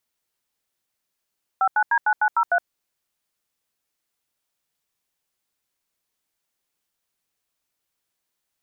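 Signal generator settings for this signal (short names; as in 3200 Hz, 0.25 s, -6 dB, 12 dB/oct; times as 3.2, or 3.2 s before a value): DTMF "59D9903", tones 67 ms, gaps 84 ms, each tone -18.5 dBFS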